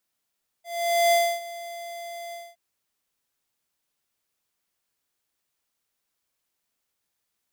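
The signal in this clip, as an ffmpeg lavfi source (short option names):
-f lavfi -i "aevalsrc='0.119*(2*lt(mod(686*t,1),0.5)-1)':d=1.917:s=44100,afade=t=in:d=0.477,afade=t=out:st=0.477:d=0.282:silence=0.119,afade=t=out:st=1.69:d=0.227"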